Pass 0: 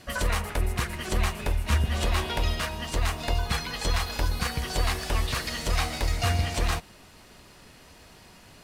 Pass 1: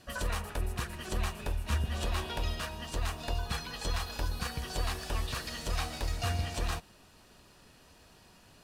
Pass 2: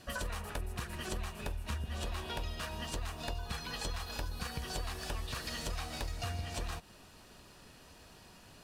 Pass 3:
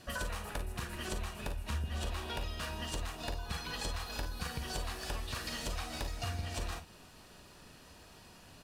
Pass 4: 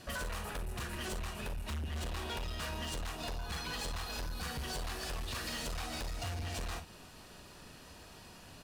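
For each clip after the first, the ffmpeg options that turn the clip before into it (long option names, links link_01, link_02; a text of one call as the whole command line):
ffmpeg -i in.wav -af "bandreject=frequency=2100:width=8.6,volume=-7dB" out.wav
ffmpeg -i in.wav -af "acompressor=threshold=-37dB:ratio=6,volume=2dB" out.wav
ffmpeg -i in.wav -af "aecho=1:1:42|54:0.299|0.266" out.wav
ffmpeg -i in.wav -af "asoftclip=type=hard:threshold=-38dB,volume=2.5dB" out.wav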